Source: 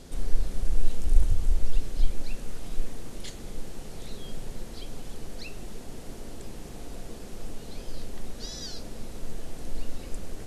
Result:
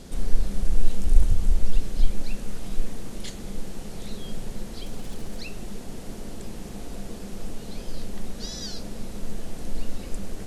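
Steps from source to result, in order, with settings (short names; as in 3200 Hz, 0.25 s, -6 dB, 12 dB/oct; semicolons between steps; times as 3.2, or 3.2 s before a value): 4.85–5.41 zero-crossing step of -48 dBFS; bell 200 Hz +9 dB 0.2 oct; gain +3 dB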